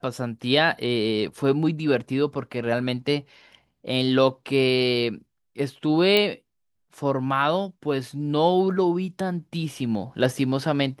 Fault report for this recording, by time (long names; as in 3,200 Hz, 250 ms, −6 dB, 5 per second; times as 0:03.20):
0:06.17: click −8 dBFS